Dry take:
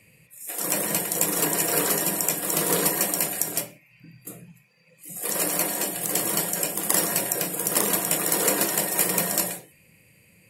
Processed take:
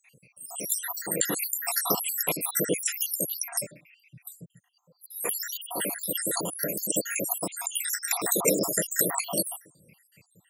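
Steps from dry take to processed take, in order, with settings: random holes in the spectrogram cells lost 81%; high-pass 95 Hz 12 dB/octave; trim +3 dB

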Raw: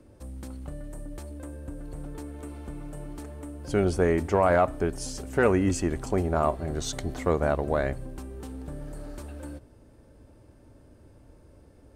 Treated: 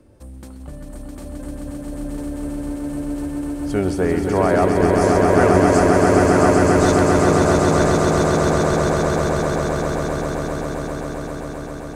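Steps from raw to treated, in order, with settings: echo with a slow build-up 132 ms, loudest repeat 8, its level -3.5 dB; trim +2.5 dB

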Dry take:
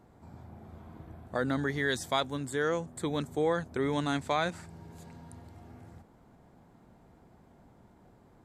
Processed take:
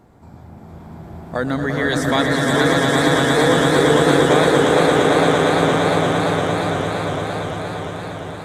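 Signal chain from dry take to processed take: echo with a slow build-up 115 ms, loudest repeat 8, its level -4 dB; modulated delay 417 ms, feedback 43%, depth 192 cents, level -6 dB; trim +8.5 dB

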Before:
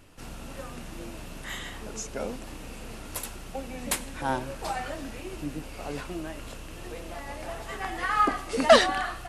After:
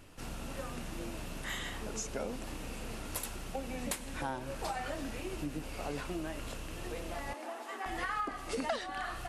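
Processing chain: compression 8:1, threshold -32 dBFS, peak gain reduction 20.5 dB; 7.33–7.86 s: rippled Chebyshev high-pass 230 Hz, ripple 6 dB; trim -1 dB

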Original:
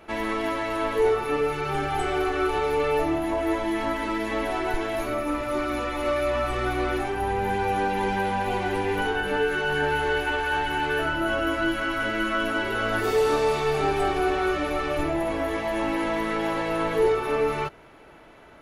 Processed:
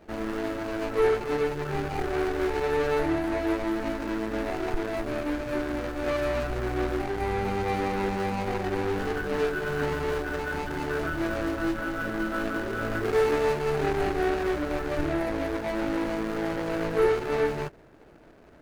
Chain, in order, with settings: median filter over 41 samples; peaking EQ 1.5 kHz +6 dB 0.9 oct

